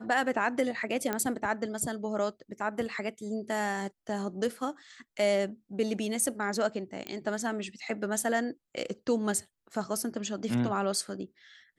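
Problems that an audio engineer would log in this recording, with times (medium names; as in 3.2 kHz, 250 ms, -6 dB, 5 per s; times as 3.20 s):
1.13 s: pop -15 dBFS
7.07 s: pop -21 dBFS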